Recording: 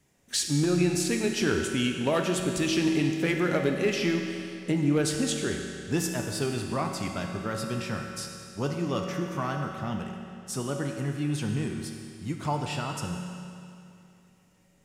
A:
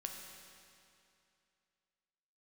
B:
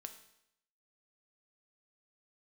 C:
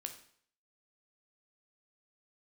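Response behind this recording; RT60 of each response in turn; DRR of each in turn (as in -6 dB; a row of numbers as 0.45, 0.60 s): A; 2.6, 0.75, 0.60 s; 2.0, 6.5, 5.0 dB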